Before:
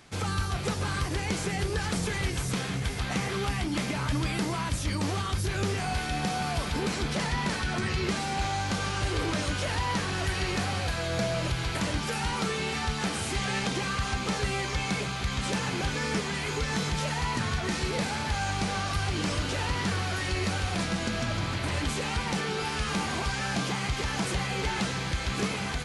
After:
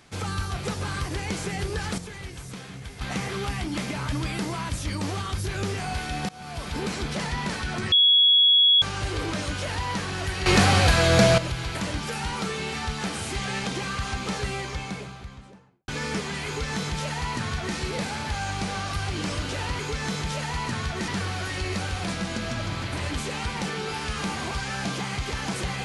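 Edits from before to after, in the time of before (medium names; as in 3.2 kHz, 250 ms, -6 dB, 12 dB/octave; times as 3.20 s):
1.98–3.01 s: gain -8.5 dB
6.29–6.80 s: fade in, from -20.5 dB
7.92–8.82 s: bleep 3.35 kHz -14 dBFS
10.46–11.38 s: gain +11.5 dB
14.35–15.88 s: studio fade out
16.47–17.76 s: copy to 19.79 s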